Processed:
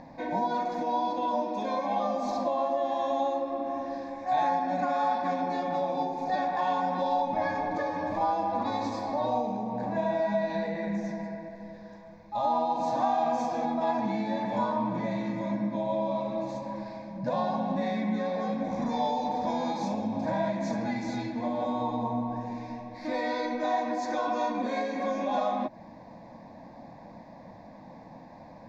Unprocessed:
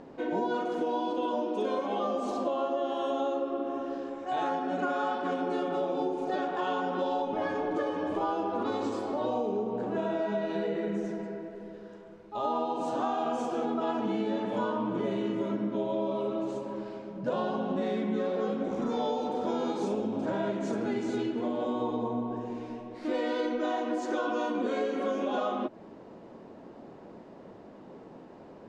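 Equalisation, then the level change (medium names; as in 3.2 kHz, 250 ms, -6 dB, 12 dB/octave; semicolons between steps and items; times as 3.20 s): static phaser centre 2 kHz, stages 8; +6.0 dB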